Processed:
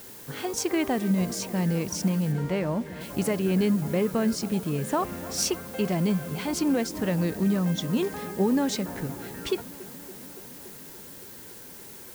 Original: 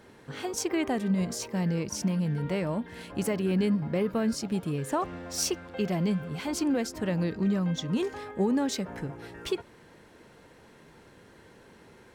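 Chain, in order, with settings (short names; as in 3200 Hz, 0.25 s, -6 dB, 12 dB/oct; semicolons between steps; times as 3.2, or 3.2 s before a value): added noise blue -48 dBFS; 2.31–3 high shelf 8900 Hz -> 4400 Hz -12 dB; analogue delay 0.284 s, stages 4096, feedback 79%, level -18.5 dB; gain +2.5 dB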